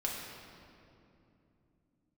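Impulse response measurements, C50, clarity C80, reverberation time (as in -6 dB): 1.0 dB, 2.0 dB, 2.8 s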